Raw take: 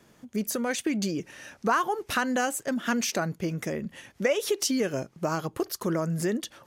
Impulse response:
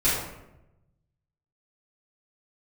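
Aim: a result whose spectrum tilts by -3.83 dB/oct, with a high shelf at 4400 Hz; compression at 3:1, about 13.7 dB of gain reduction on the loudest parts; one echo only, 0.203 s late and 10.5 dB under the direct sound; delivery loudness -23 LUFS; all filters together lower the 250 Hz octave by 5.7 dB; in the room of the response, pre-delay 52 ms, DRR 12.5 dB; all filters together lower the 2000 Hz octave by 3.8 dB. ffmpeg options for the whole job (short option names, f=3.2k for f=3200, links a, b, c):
-filter_complex "[0:a]equalizer=f=250:t=o:g=-7.5,equalizer=f=2k:t=o:g=-6,highshelf=f=4.4k:g=4,acompressor=threshold=-41dB:ratio=3,aecho=1:1:203:0.299,asplit=2[a][b];[1:a]atrim=start_sample=2205,adelay=52[c];[b][c]afir=irnorm=-1:irlink=0,volume=-26.5dB[d];[a][d]amix=inputs=2:normalize=0,volume=17.5dB"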